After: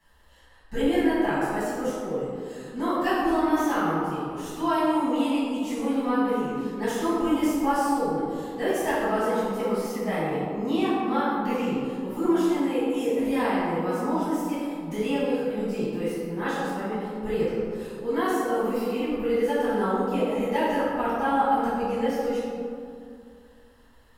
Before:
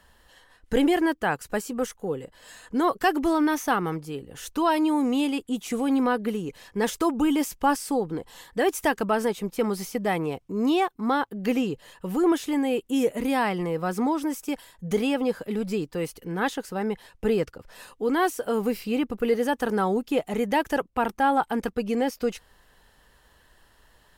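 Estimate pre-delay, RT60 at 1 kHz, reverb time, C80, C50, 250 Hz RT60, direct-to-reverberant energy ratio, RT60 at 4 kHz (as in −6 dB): 6 ms, 2.2 s, 2.3 s, 0.0 dB, −2.5 dB, 2.6 s, −12.5 dB, 1.1 s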